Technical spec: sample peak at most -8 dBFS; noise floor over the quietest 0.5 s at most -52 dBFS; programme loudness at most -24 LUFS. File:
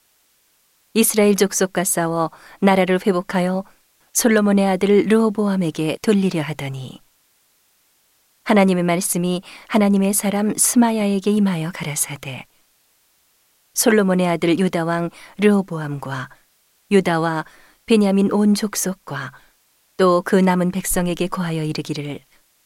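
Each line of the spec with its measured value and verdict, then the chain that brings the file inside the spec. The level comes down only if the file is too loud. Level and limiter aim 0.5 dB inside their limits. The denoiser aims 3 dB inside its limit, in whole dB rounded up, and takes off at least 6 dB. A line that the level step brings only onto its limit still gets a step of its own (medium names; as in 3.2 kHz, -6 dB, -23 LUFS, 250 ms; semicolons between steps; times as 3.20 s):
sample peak -4.0 dBFS: fail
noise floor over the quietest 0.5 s -61 dBFS: pass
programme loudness -18.5 LUFS: fail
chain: trim -6 dB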